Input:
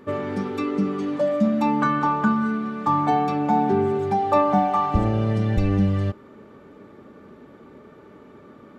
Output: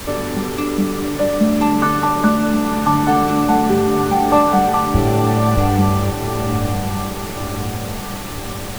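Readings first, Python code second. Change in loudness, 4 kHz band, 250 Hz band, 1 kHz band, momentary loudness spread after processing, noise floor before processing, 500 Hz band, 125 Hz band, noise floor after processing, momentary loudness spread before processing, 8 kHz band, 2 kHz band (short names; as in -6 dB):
+4.5 dB, +14.5 dB, +6.0 dB, +5.5 dB, 10 LU, -48 dBFS, +5.5 dB, +6.0 dB, -27 dBFS, 6 LU, n/a, +7.5 dB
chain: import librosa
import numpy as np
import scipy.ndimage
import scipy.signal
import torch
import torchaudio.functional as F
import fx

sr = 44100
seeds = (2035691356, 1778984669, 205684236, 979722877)

y = fx.echo_diffused(x, sr, ms=1042, feedback_pct=53, wet_db=-6.0)
y = fx.dmg_noise_colour(y, sr, seeds[0], colour='pink', level_db=-34.0)
y = y * librosa.db_to_amplitude(4.5)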